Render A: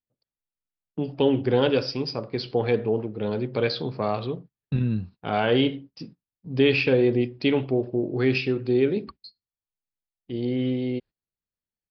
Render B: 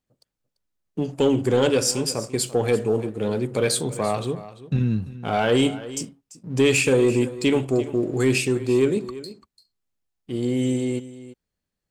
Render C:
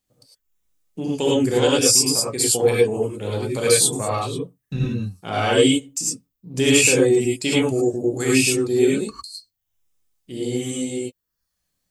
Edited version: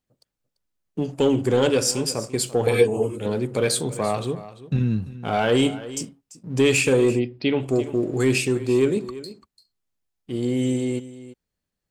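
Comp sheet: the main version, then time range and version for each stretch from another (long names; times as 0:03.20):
B
0:02.67–0:03.26: punch in from C
0:07.16–0:07.64: punch in from A, crossfade 0.10 s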